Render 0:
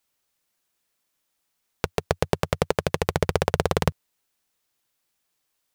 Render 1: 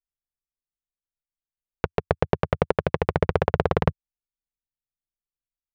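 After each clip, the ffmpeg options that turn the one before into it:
-af "anlmdn=1,lowpass=2.1k,volume=1.5dB"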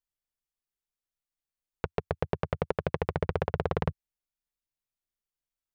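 -af "alimiter=limit=-11dB:level=0:latency=1:release=37"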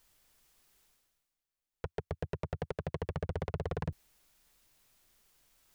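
-af "areverse,acompressor=mode=upward:threshold=-50dB:ratio=2.5,areverse,asoftclip=type=tanh:threshold=-28.5dB,volume=1dB"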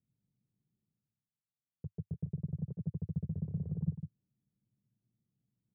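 -af "asuperpass=centerf=150:order=4:qfactor=1.4,aecho=1:1:152:0.355,volume=5dB"

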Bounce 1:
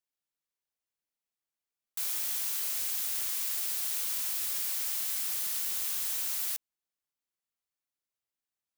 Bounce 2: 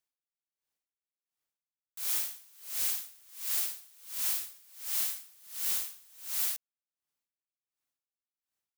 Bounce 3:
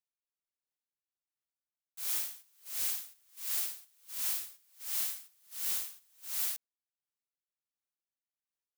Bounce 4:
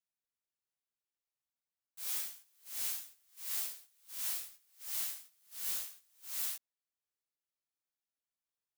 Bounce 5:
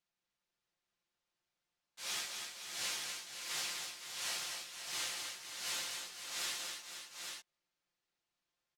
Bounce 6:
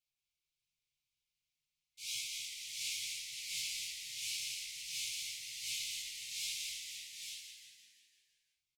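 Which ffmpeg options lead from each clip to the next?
-af "aeval=exprs='val(0)*pow(10,-30*(0.5-0.5*cos(2*PI*1.4*n/s))/20)':c=same,volume=3.5dB"
-af "agate=range=-7dB:threshold=-48dB:ratio=16:detection=peak,volume=-2.5dB"
-af "flanger=delay=15:depth=2.2:speed=0.44"
-filter_complex "[0:a]lowpass=5.2k,aecho=1:1:5.7:0.48,asplit=2[a][b];[b]aecho=0:1:245|516|837:0.562|0.355|0.501[c];[a][c]amix=inputs=2:normalize=0,volume=7dB"
-filter_complex "[0:a]afftfilt=real='re*(1-between(b*sr/4096,170,2100))':imag='im*(1-between(b*sr/4096,170,2100))':win_size=4096:overlap=0.75,flanger=delay=16:depth=3.2:speed=0.89,asplit=8[a][b][c][d][e][f][g][h];[b]adelay=170,afreqshift=-84,volume=-6.5dB[i];[c]adelay=340,afreqshift=-168,volume=-11.5dB[j];[d]adelay=510,afreqshift=-252,volume=-16.6dB[k];[e]adelay=680,afreqshift=-336,volume=-21.6dB[l];[f]adelay=850,afreqshift=-420,volume=-26.6dB[m];[g]adelay=1020,afreqshift=-504,volume=-31.7dB[n];[h]adelay=1190,afreqshift=-588,volume=-36.7dB[o];[a][i][j][k][l][m][n][o]amix=inputs=8:normalize=0,volume=2.5dB"

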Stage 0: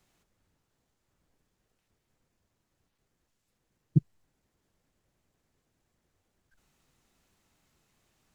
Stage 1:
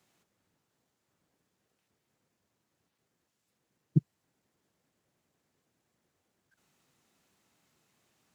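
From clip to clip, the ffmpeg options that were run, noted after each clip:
-af "highpass=130"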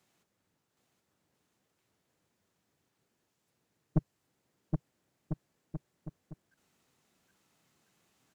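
-af "aeval=exprs='(tanh(14.1*val(0)+0.75)-tanh(0.75))/14.1':c=same,aecho=1:1:770|1348|1781|2105|2349:0.631|0.398|0.251|0.158|0.1,volume=3dB"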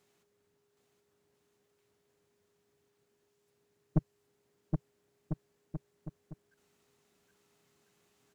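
-af "aeval=exprs='val(0)+0.000178*sin(2*PI*410*n/s)':c=same"

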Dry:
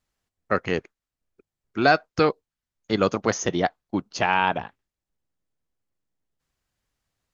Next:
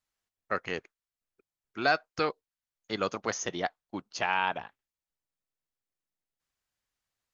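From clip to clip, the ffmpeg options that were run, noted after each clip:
-af "lowshelf=f=500:g=-9.5,volume=-5dB"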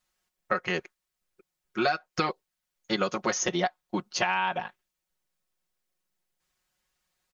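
-af "aecho=1:1:5.5:0.86,acompressor=threshold=-28dB:ratio=16,volume=6dB"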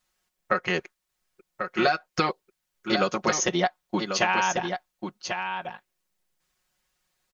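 -af "aecho=1:1:1092:0.447,volume=3dB"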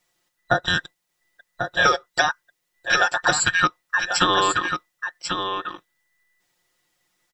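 -af "afftfilt=real='real(if(between(b,1,1012),(2*floor((b-1)/92)+1)*92-b,b),0)':imag='imag(if(between(b,1,1012),(2*floor((b-1)/92)+1)*92-b,b),0)*if(between(b,1,1012),-1,1)':win_size=2048:overlap=0.75,volume=4.5dB"

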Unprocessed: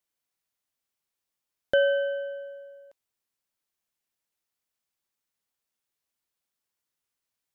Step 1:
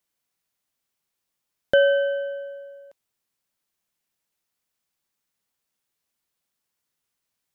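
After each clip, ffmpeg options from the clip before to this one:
-af "equalizer=f=170:w=1.7:g=3.5,volume=4.5dB"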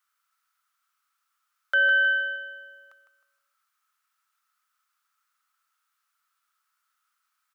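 -af "highpass=f=1.3k:t=q:w=12,aecho=1:1:156|312|468|624:0.355|0.128|0.046|0.0166,alimiter=limit=-14.5dB:level=0:latency=1:release=181"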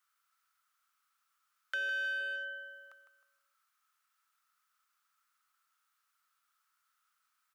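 -filter_complex "[0:a]acrossover=split=690|1400[a][b][c];[a]acompressor=threshold=-41dB:ratio=4[d];[b]acompressor=threshold=-42dB:ratio=4[e];[c]acompressor=threshold=-36dB:ratio=4[f];[d][e][f]amix=inputs=3:normalize=0,acrossover=split=1500[g][h];[g]asoftclip=type=hard:threshold=-39.5dB[i];[i][h]amix=inputs=2:normalize=0,volume=-2dB"

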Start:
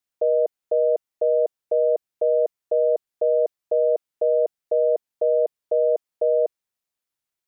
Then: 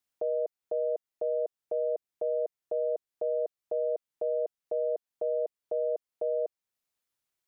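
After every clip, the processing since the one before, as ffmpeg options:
-af "alimiter=limit=-23dB:level=0:latency=1:release=401"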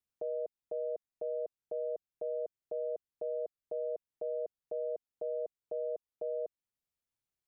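-af "lowshelf=f=260:g=12,volume=-9dB"

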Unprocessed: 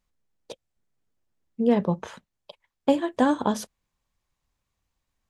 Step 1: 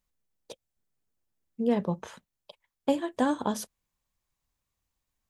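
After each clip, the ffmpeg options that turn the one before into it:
-af "highshelf=f=8.1k:g=9.5,volume=-5dB"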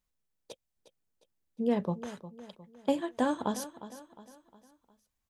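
-af "aecho=1:1:357|714|1071|1428:0.2|0.0878|0.0386|0.017,volume=-2.5dB"

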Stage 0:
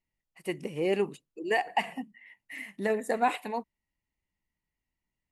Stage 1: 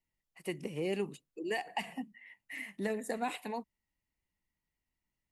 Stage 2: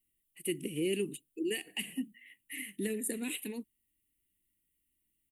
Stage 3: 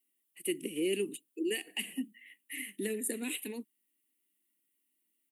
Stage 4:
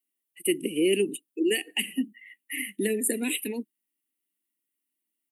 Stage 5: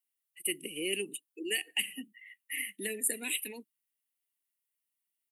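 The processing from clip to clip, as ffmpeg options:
-filter_complex "[0:a]acrossover=split=240|3000[a][b][c];[b]acompressor=threshold=-36dB:ratio=2.5[d];[a][d][c]amix=inputs=3:normalize=0,volume=-1.5dB"
-af "firequalizer=gain_entry='entry(190,0);entry(310,8);entry(720,-22);entry(1900,-3);entry(3000,7);entry(5000,-9);entry(9200,15)':delay=0.05:min_phase=1"
-af "highpass=f=220:w=0.5412,highpass=f=220:w=1.3066,volume=1dB"
-af "afftdn=nr=13:nf=-49,volume=8.5dB"
-af "equalizer=f=270:t=o:w=2.1:g=-13.5,volume=-2.5dB"

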